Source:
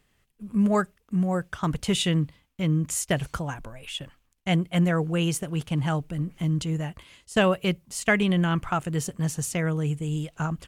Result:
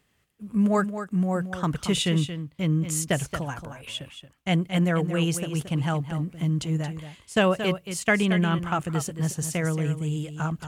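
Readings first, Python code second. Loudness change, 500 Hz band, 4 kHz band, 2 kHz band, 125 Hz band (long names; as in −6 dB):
+0.5 dB, +0.5 dB, +0.5 dB, +0.5 dB, +0.5 dB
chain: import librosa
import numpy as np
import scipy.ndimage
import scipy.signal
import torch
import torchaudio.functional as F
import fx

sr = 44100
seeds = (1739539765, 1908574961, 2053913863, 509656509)

p1 = scipy.signal.sosfilt(scipy.signal.butter(2, 58.0, 'highpass', fs=sr, output='sos'), x)
y = p1 + fx.echo_single(p1, sr, ms=226, db=-10.0, dry=0)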